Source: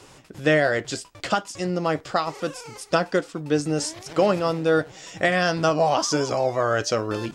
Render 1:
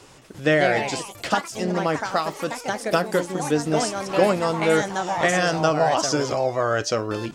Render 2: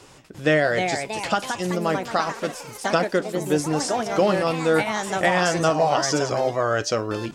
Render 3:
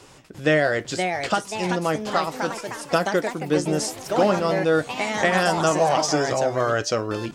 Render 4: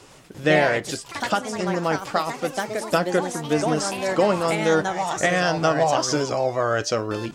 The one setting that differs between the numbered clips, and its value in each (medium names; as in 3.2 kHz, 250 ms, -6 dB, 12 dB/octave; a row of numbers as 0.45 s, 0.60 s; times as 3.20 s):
ever faster or slower copies, time: 217 ms, 385 ms, 596 ms, 109 ms